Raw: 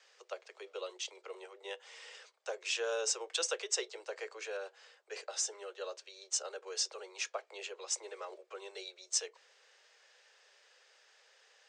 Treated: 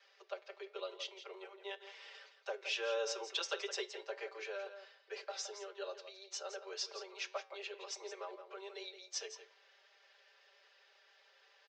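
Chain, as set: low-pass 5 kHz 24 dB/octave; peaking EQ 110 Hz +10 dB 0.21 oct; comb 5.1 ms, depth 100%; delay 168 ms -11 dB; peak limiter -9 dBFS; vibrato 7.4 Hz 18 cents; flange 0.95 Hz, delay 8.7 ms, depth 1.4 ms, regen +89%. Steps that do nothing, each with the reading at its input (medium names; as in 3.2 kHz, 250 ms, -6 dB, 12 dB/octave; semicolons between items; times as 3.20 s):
peaking EQ 110 Hz: input has nothing below 300 Hz; peak limiter -9 dBFS: peak at its input -20.0 dBFS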